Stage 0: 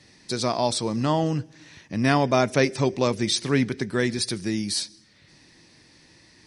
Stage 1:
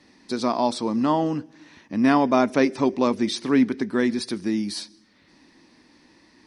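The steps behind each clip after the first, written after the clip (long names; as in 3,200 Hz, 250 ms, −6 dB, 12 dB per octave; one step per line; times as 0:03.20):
octave-band graphic EQ 125/250/1,000/8,000 Hz −10/+11/+7/−6 dB
level −3.5 dB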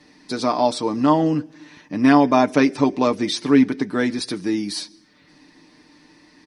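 comb filter 6.7 ms, depth 55%
level +2.5 dB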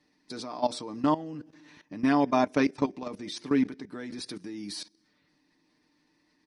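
output level in coarse steps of 16 dB
level −6 dB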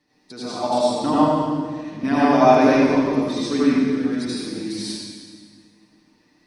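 convolution reverb RT60 1.7 s, pre-delay 72 ms, DRR −9.5 dB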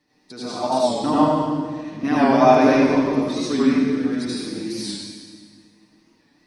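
wow of a warped record 45 rpm, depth 100 cents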